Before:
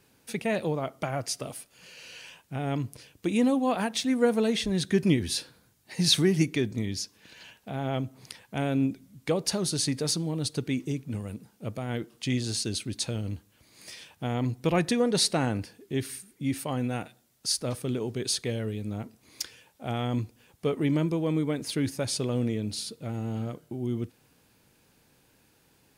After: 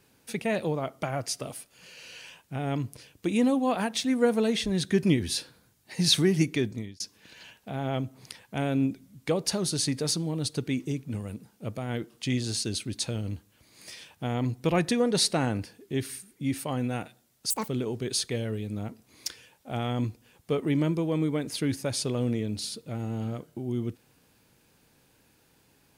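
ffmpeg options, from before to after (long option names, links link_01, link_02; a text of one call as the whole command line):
ffmpeg -i in.wav -filter_complex "[0:a]asplit=4[link_01][link_02][link_03][link_04];[link_01]atrim=end=7,asetpts=PTS-STARTPTS,afade=type=out:start_time=6.65:duration=0.35[link_05];[link_02]atrim=start=7:end=17.504,asetpts=PTS-STARTPTS,afade=type=in:duration=0.004:curve=hsin[link_06];[link_03]atrim=start=17.5:end=17.83,asetpts=PTS-STARTPTS,asetrate=78498,aresample=44100[link_07];[link_04]atrim=start=17.826[link_08];[link_05][link_06]concat=n=2:v=0:a=1[link_09];[link_09][link_07]acrossfade=duration=0.004:curve1=hsin:curve2=hsin[link_10];[link_10][link_08]acrossfade=duration=0.004:curve1=hsin:curve2=hsin" out.wav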